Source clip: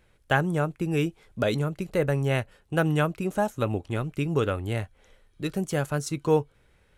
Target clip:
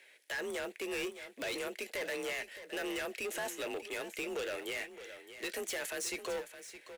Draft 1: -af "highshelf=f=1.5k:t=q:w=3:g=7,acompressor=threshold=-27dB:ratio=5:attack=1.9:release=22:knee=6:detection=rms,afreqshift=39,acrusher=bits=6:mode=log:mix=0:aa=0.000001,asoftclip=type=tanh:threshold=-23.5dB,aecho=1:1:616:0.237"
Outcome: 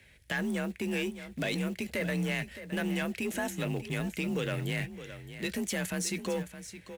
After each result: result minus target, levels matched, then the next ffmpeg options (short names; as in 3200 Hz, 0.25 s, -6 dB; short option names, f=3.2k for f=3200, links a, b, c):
250 Hz band +7.0 dB; soft clip: distortion -10 dB
-af "highpass=f=330:w=0.5412,highpass=f=330:w=1.3066,highshelf=f=1.5k:t=q:w=3:g=7,acompressor=threshold=-27dB:ratio=5:attack=1.9:release=22:knee=6:detection=rms,afreqshift=39,acrusher=bits=6:mode=log:mix=0:aa=0.000001,asoftclip=type=tanh:threshold=-23.5dB,aecho=1:1:616:0.237"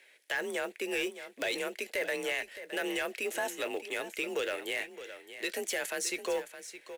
soft clip: distortion -10 dB
-af "highpass=f=330:w=0.5412,highpass=f=330:w=1.3066,highshelf=f=1.5k:t=q:w=3:g=7,acompressor=threshold=-27dB:ratio=5:attack=1.9:release=22:knee=6:detection=rms,afreqshift=39,acrusher=bits=6:mode=log:mix=0:aa=0.000001,asoftclip=type=tanh:threshold=-34dB,aecho=1:1:616:0.237"